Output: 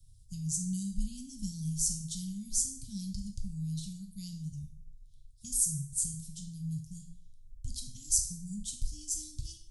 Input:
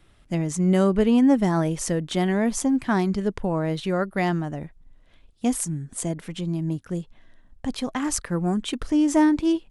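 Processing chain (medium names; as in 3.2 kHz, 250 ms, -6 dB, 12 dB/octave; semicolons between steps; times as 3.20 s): inverse Chebyshev band-stop 360–1900 Hz, stop band 60 dB; plate-style reverb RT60 0.53 s, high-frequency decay 1×, DRR 3 dB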